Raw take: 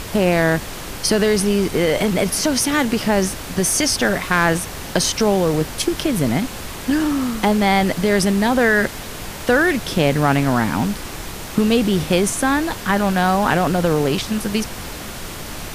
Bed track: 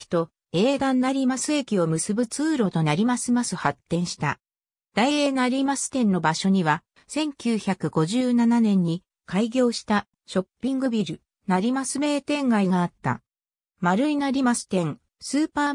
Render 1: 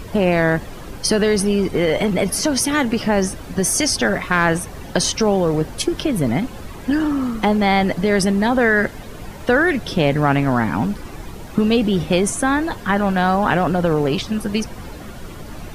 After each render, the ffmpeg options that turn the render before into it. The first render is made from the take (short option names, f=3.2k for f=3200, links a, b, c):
-af "afftdn=nr=12:nf=-31"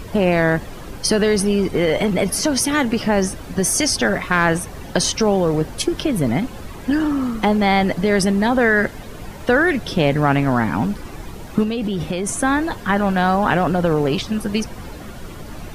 -filter_complex "[0:a]asettb=1/sr,asplit=3[a][b][c];[a]atrim=end=11.634[d];[b]atrim=start=11.63:end=12.29,asetpts=PTS-STARTPTS,afade=t=in:d=0.004:c=qsin,afade=t=out:st=0.656:d=0.004:c=qsin,acompressor=threshold=-18dB:ratio=10:attack=3.2:release=140:knee=1:detection=peak[e];[c]atrim=start=12.286[f];[d][e]acrossfade=d=0.004:c1=hsin:c2=qsin[g];[g][f]acrossfade=d=0.004:c1=qsin:c2=hsin"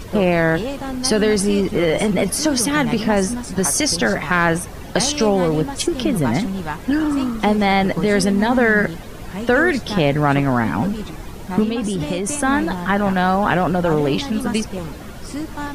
-filter_complex "[1:a]volume=-5.5dB[a];[0:a][a]amix=inputs=2:normalize=0"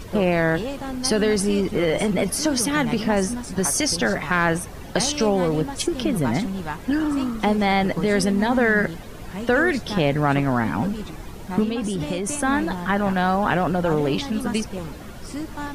-af "volume=-3.5dB"